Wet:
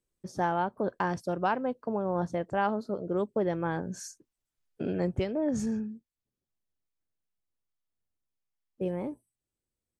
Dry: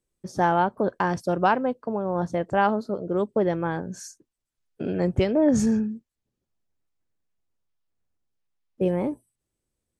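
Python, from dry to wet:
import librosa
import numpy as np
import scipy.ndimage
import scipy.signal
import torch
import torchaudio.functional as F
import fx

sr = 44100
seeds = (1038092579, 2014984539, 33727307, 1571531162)

y = fx.rider(x, sr, range_db=4, speed_s=0.5)
y = y * 10.0 ** (-6.0 / 20.0)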